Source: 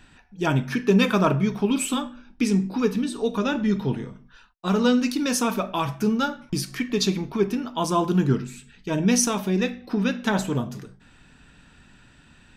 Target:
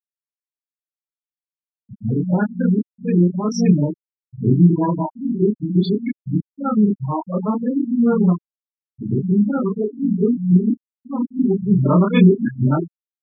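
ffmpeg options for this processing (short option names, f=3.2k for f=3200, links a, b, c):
-filter_complex "[0:a]areverse,asplit=2[a][b];[b]aecho=0:1:27|61:0.708|0.126[c];[a][c]amix=inputs=2:normalize=0,afwtdn=0.0316,afftfilt=real='re*gte(hypot(re,im),0.178)':imag='im*gte(hypot(re,im),0.178)':win_size=1024:overlap=0.75,lowpass=4.2k,lowshelf=f=420:g=8.5,asetrate=41895,aresample=44100,volume=-1.5dB"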